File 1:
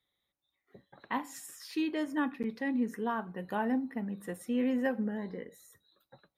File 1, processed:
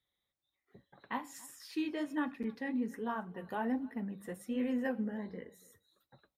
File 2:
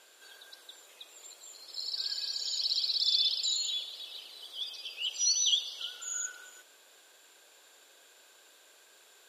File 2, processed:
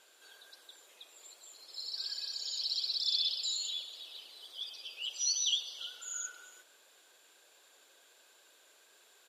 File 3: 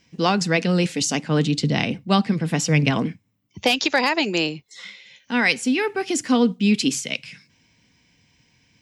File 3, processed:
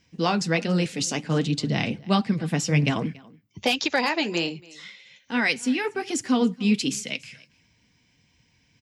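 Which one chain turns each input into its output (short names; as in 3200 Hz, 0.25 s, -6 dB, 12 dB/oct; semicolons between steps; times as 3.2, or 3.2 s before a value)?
bell 70 Hz +4.5 dB 1.3 oct; on a send: echo 0.282 s -23.5 dB; on the sum: flange 1.3 Hz, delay 0.5 ms, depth 9.1 ms, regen -48%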